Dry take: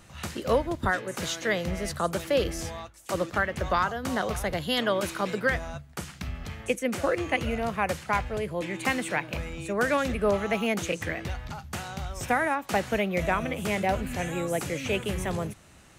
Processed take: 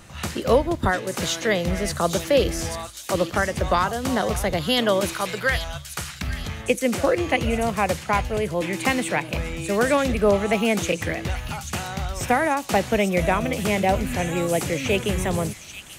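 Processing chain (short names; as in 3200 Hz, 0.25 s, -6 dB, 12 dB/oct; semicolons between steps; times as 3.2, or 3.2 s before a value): 5.13–6.22 EQ curve 120 Hz 0 dB, 220 Hz -11 dB, 1500 Hz +2 dB; thin delay 0.838 s, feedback 35%, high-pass 4000 Hz, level -5 dB; dynamic EQ 1500 Hz, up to -5 dB, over -39 dBFS, Q 1.5; gain +6.5 dB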